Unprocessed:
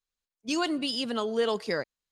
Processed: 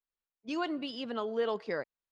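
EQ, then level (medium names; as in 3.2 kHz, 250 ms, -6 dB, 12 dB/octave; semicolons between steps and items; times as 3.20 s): tape spacing loss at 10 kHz 30 dB; bass shelf 320 Hz -9 dB; 0.0 dB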